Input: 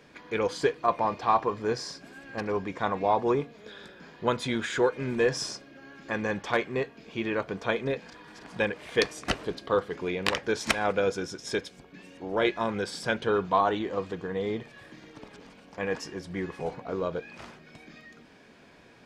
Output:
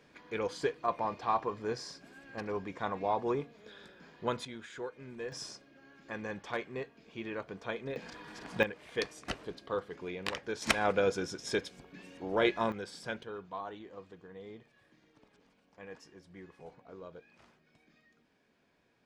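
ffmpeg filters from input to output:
ffmpeg -i in.wav -af "asetnsamples=nb_out_samples=441:pad=0,asendcmd='4.45 volume volume -16.5dB;5.32 volume volume -10dB;7.96 volume volume 0dB;8.63 volume volume -9.5dB;10.62 volume volume -2.5dB;12.72 volume volume -10.5dB;13.23 volume volume -17.5dB',volume=-7dB" out.wav

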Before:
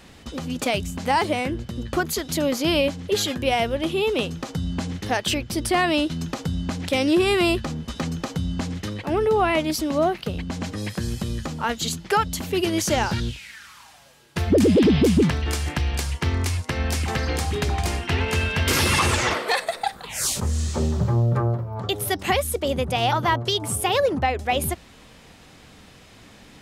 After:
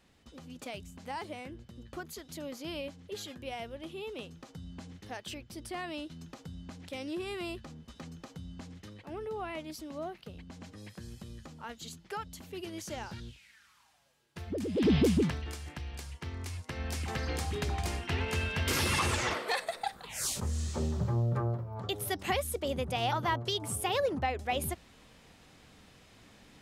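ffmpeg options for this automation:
ffmpeg -i in.wav -af "volume=1dB,afade=type=in:start_time=14.73:duration=0.2:silence=0.251189,afade=type=out:start_time=14.93:duration=0.63:silence=0.298538,afade=type=in:start_time=16.35:duration=0.95:silence=0.421697" out.wav

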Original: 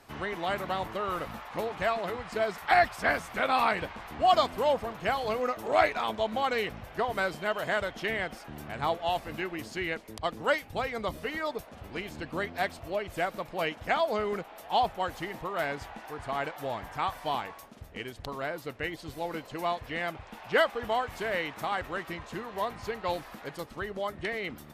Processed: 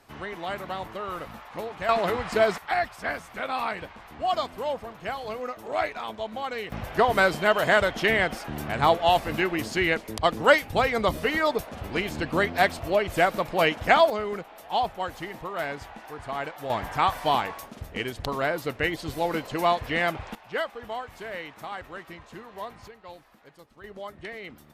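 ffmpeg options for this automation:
ffmpeg -i in.wav -af "asetnsamples=nb_out_samples=441:pad=0,asendcmd='1.89 volume volume 8dB;2.58 volume volume -3.5dB;6.72 volume volume 9dB;14.1 volume volume 0.5dB;16.7 volume volume 8dB;20.35 volume volume -5dB;22.88 volume volume -13dB;23.84 volume volume -5dB',volume=-1.5dB" out.wav

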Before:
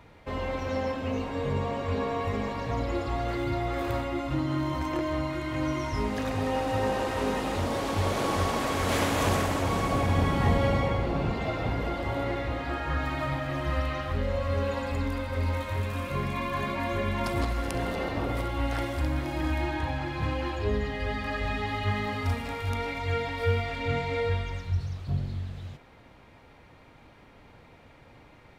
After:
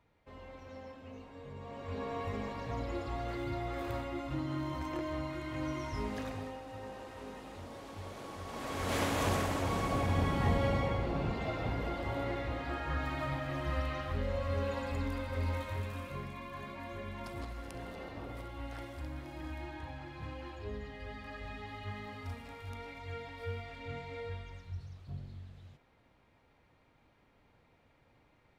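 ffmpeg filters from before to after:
ffmpeg -i in.wav -af "volume=4dB,afade=type=in:start_time=1.57:duration=0.6:silence=0.298538,afade=type=out:start_time=6.17:duration=0.41:silence=0.316228,afade=type=in:start_time=8.44:duration=0.57:silence=0.251189,afade=type=out:start_time=15.55:duration=0.82:silence=0.398107" out.wav

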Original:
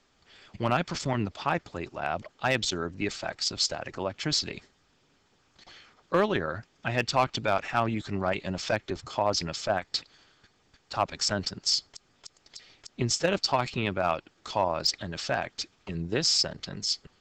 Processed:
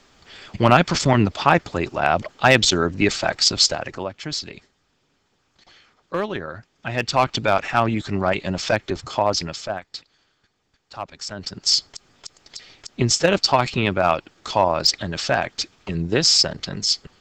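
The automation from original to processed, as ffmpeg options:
ffmpeg -i in.wav -af "volume=33dB,afade=type=out:start_time=3.47:duration=0.69:silence=0.237137,afade=type=in:start_time=6.74:duration=0.6:silence=0.398107,afade=type=out:start_time=9.15:duration=0.72:silence=0.251189,afade=type=in:start_time=11.36:duration=0.4:silence=0.223872" out.wav

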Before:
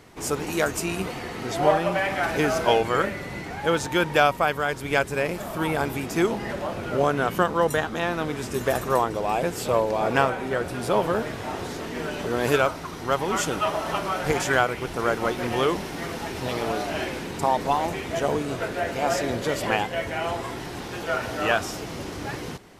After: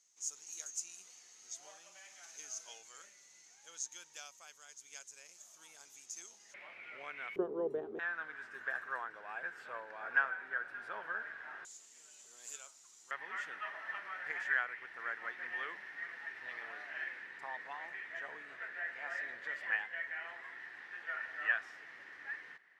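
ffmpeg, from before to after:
ffmpeg -i in.wav -af "asetnsamples=nb_out_samples=441:pad=0,asendcmd='6.54 bandpass f 2200;7.36 bandpass f 400;7.99 bandpass f 1600;11.65 bandpass f 7100;13.11 bandpass f 1800',bandpass=frequency=6500:width_type=q:width=10:csg=0" out.wav

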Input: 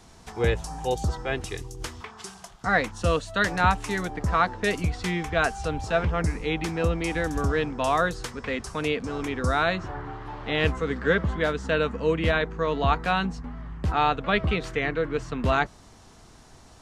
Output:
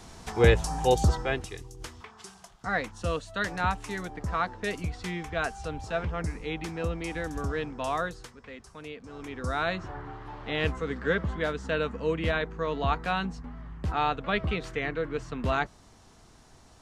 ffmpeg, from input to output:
ffmpeg -i in.wav -af "volume=14.5dB,afade=type=out:start_time=1.07:duration=0.42:silence=0.298538,afade=type=out:start_time=7.97:duration=0.4:silence=0.375837,afade=type=in:start_time=9.02:duration=0.7:silence=0.298538" out.wav

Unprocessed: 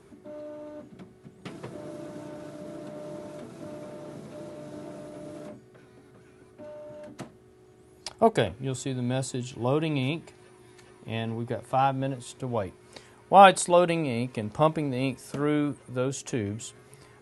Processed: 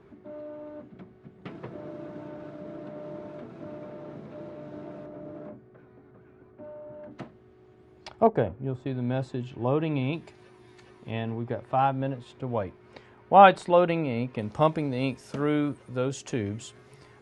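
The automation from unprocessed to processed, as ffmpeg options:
ffmpeg -i in.wav -af "asetnsamples=nb_out_samples=441:pad=0,asendcmd='5.06 lowpass f 1600;7.11 lowpass f 3100;8.27 lowpass f 1200;8.86 lowpass f 2300;10.13 lowpass f 5600;11.11 lowpass f 2800;14.39 lowpass f 6200',lowpass=2600" out.wav

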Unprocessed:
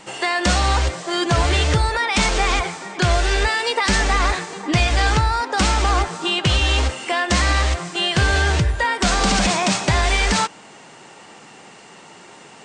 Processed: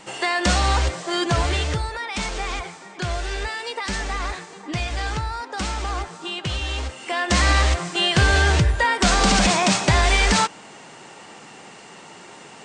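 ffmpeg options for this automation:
ffmpeg -i in.wav -af "volume=8dB,afade=type=out:start_time=1.15:duration=0.75:silence=0.421697,afade=type=in:start_time=6.93:duration=0.54:silence=0.334965" out.wav

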